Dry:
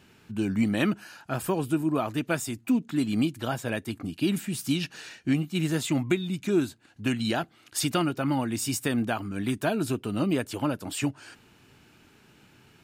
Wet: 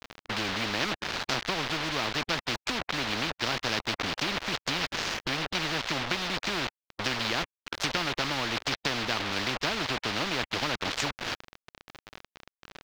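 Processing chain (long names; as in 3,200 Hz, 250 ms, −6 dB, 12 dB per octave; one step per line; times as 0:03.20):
gap after every zero crossing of 0.14 ms
treble cut that deepens with the level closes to 2,700 Hz, closed at −23.5 dBFS
high-pass filter 130 Hz 12 dB per octave
high-shelf EQ 2,600 Hz +9 dB
in parallel at +1.5 dB: downward compressor 20 to 1, threshold −37 dBFS, peak gain reduction 19 dB
on the sum: bit-depth reduction 6 bits, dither none
high-frequency loss of the air 240 metres
every bin compressed towards the loudest bin 4 to 1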